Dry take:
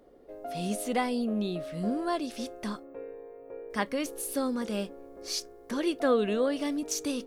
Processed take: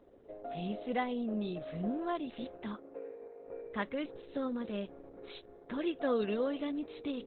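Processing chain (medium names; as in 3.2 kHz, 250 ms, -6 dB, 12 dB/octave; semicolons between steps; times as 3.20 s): 2.63–3.46 s: elliptic high-pass 210 Hz, stop band 60 dB; in parallel at -2 dB: compression 5:1, threshold -39 dBFS, peak gain reduction 17.5 dB; on the sum: trim -6.5 dB; Opus 8 kbps 48 kHz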